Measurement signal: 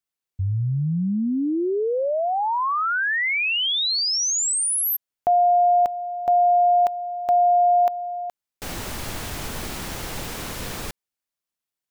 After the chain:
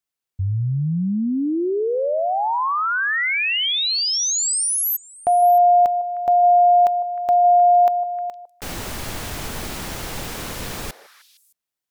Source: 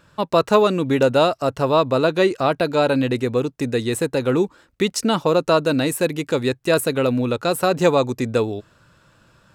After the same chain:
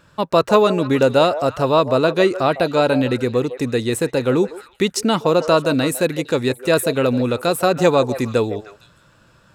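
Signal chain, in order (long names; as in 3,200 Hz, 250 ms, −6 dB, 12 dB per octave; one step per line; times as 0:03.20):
echo through a band-pass that steps 154 ms, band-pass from 620 Hz, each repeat 1.4 octaves, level −10 dB
level +1.5 dB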